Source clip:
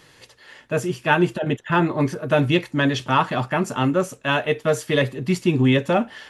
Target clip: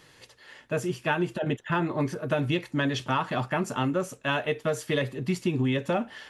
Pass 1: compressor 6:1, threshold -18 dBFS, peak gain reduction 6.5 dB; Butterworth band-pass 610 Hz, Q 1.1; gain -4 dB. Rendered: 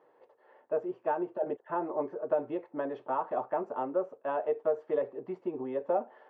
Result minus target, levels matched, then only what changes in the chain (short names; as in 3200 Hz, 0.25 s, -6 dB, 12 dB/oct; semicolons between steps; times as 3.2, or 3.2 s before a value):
500 Hz band +4.5 dB
remove: Butterworth band-pass 610 Hz, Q 1.1